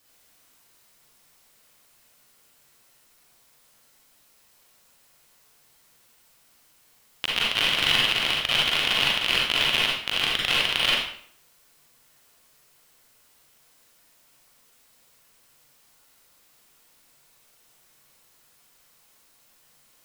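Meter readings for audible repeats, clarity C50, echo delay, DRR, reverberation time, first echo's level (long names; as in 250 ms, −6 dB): no echo audible, −1.0 dB, no echo audible, −4.5 dB, 0.60 s, no echo audible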